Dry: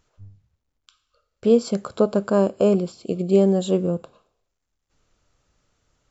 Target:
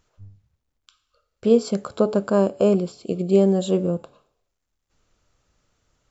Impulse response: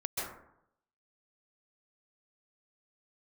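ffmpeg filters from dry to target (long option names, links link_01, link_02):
-af "bandreject=frequency=142.7:width_type=h:width=4,bandreject=frequency=285.4:width_type=h:width=4,bandreject=frequency=428.1:width_type=h:width=4,bandreject=frequency=570.8:width_type=h:width=4,bandreject=frequency=713.5:width_type=h:width=4,bandreject=frequency=856.2:width_type=h:width=4"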